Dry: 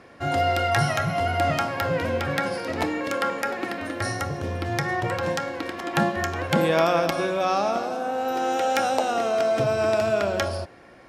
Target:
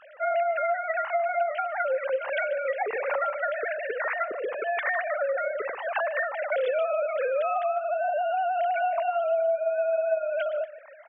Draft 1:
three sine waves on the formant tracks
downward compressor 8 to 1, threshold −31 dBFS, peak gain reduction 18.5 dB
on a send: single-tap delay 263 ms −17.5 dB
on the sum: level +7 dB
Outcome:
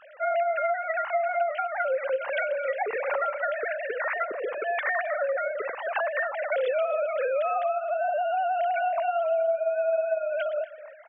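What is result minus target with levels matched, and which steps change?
echo 114 ms late
change: single-tap delay 149 ms −17.5 dB

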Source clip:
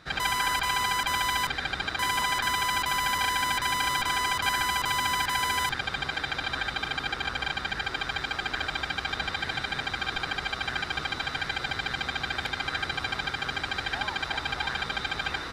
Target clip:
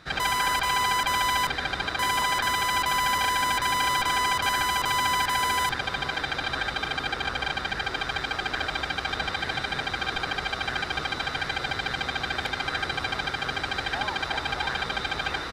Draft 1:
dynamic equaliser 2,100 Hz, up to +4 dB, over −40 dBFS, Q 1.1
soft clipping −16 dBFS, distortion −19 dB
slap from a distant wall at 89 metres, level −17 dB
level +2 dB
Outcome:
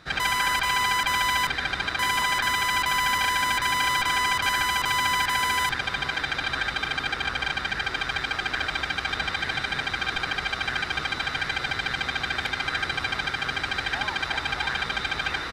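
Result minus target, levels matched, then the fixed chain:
500 Hz band −4.0 dB
dynamic equaliser 540 Hz, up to +4 dB, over −40 dBFS, Q 1.1
soft clipping −16 dBFS, distortion −22 dB
slap from a distant wall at 89 metres, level −17 dB
level +2 dB

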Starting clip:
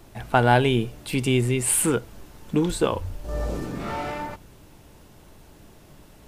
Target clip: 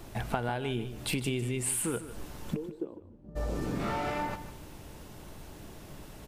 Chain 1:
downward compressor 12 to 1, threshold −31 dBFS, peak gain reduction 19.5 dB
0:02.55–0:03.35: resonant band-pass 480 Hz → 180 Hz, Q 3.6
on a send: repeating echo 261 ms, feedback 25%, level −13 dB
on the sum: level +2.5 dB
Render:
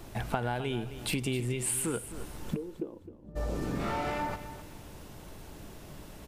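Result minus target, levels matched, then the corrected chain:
echo 110 ms late
downward compressor 12 to 1, threshold −31 dBFS, peak gain reduction 19.5 dB
0:02.55–0:03.35: resonant band-pass 480 Hz → 180 Hz, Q 3.6
on a send: repeating echo 151 ms, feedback 25%, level −13 dB
on the sum: level +2.5 dB

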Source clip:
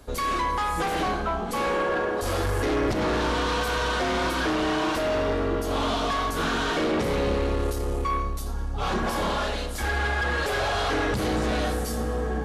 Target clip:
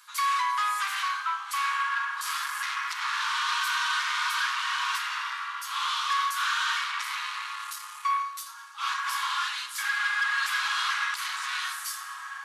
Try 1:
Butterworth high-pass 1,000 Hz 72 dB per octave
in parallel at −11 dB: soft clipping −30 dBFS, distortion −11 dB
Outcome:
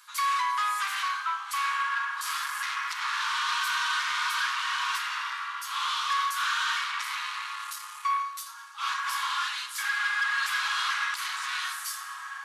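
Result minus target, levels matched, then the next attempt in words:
soft clipping: distortion +11 dB
Butterworth high-pass 1,000 Hz 72 dB per octave
in parallel at −11 dB: soft clipping −21.5 dBFS, distortion −22 dB

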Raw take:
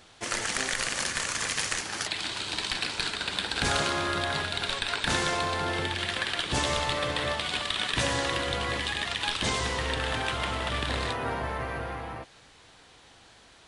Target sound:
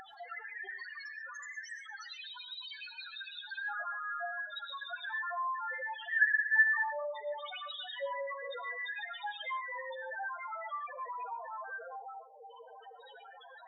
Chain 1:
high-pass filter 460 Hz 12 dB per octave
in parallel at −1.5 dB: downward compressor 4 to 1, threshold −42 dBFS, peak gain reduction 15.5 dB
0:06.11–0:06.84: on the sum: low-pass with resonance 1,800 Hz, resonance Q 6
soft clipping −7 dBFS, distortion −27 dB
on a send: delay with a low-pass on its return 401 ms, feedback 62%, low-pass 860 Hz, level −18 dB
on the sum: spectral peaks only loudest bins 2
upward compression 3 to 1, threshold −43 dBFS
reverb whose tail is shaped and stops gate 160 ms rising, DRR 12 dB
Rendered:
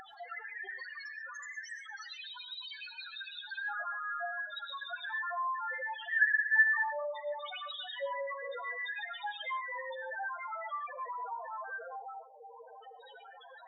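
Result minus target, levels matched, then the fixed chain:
soft clipping: distortion +13 dB; downward compressor: peak gain reduction −7.5 dB
high-pass filter 460 Hz 12 dB per octave
in parallel at −1.5 dB: downward compressor 4 to 1, threshold −52 dBFS, peak gain reduction 23 dB
0:06.11–0:06.84: on the sum: low-pass with resonance 1,800 Hz, resonance Q 6
soft clipping −0.5 dBFS, distortion −40 dB
on a send: delay with a low-pass on its return 401 ms, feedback 62%, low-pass 860 Hz, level −18 dB
on the sum: spectral peaks only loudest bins 2
upward compression 3 to 1, threshold −43 dBFS
reverb whose tail is shaped and stops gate 160 ms rising, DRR 12 dB

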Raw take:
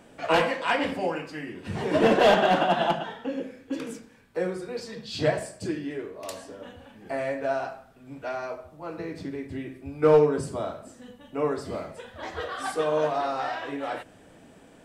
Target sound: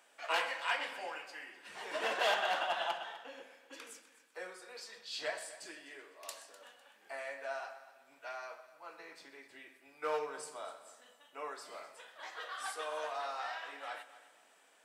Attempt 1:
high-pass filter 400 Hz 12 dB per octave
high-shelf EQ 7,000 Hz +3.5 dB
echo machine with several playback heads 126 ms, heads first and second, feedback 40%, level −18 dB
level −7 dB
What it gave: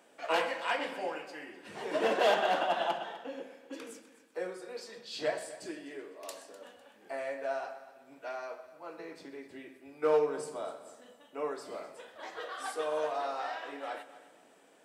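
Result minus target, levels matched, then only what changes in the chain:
500 Hz band +4.5 dB
change: high-pass filter 970 Hz 12 dB per octave

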